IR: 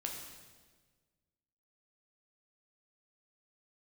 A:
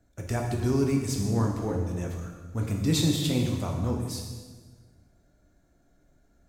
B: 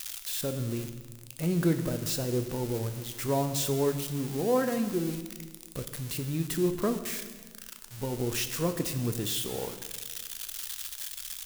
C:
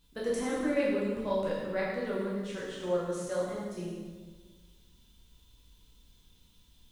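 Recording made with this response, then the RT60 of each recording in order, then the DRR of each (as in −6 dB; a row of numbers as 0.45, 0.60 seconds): A; 1.4, 1.4, 1.4 seconds; 0.0, 7.5, −7.0 decibels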